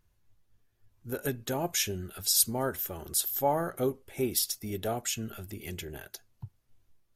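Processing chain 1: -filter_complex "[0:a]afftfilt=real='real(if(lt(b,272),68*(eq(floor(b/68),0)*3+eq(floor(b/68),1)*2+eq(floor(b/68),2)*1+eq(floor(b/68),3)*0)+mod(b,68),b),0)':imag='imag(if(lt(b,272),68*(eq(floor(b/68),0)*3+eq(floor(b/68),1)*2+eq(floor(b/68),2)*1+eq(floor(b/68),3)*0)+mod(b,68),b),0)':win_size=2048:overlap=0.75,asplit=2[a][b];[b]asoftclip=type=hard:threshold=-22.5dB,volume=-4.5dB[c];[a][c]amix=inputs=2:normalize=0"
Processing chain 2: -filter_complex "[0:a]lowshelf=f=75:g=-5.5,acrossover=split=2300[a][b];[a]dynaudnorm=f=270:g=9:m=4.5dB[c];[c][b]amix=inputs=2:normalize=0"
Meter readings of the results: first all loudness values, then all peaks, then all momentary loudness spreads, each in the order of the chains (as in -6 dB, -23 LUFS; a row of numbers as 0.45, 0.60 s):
-25.5, -28.5 LUFS; -9.0, -9.5 dBFS; 17, 14 LU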